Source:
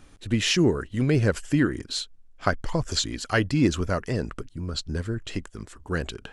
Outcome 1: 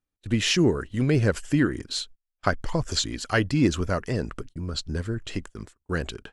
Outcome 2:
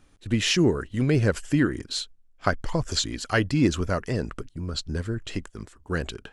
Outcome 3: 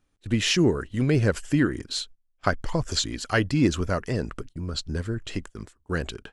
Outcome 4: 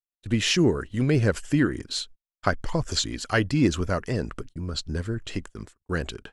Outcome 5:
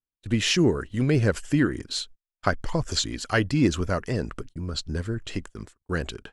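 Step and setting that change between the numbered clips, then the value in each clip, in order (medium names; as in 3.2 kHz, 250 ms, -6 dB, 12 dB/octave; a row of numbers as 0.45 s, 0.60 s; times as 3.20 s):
gate, range: -35 dB, -7 dB, -20 dB, -60 dB, -47 dB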